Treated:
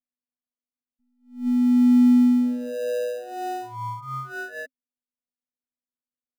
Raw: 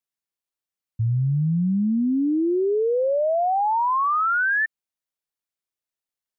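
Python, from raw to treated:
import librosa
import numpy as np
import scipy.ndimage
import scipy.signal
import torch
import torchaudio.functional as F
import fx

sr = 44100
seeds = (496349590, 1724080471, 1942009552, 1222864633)

p1 = scipy.signal.sosfilt(scipy.signal.butter(2, 1500.0, 'lowpass', fs=sr, output='sos'), x)
p2 = fx.robotise(p1, sr, hz=247.0)
p3 = fx.sample_hold(p2, sr, seeds[0], rate_hz=1100.0, jitter_pct=0)
p4 = p2 + (p3 * 10.0 ** (-5.0 / 20.0))
p5 = fx.small_body(p4, sr, hz=(260.0, 550.0), ring_ms=70, db=15)
p6 = fx.attack_slew(p5, sr, db_per_s=160.0)
y = p6 * 10.0 ** (-9.0 / 20.0)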